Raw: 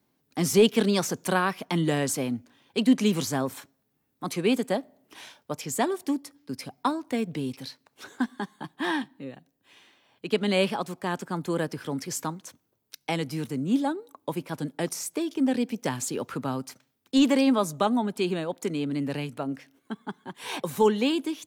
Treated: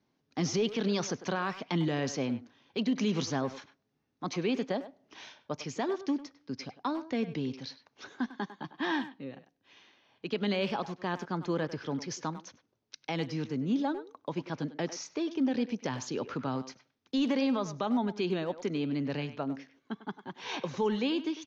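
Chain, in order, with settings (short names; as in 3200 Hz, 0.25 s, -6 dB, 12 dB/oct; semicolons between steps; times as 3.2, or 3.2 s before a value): steep low-pass 6500 Hz 96 dB/oct; limiter -18.5 dBFS, peak gain reduction 8.5 dB; speakerphone echo 0.1 s, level -12 dB; gain -3 dB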